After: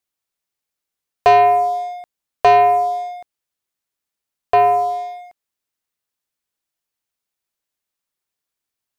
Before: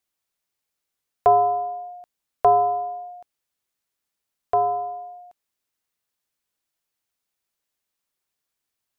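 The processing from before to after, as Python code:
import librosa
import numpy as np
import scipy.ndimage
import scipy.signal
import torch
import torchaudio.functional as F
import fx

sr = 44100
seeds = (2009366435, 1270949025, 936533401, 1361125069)

y = fx.leveller(x, sr, passes=2)
y = y * 10.0 ** (2.5 / 20.0)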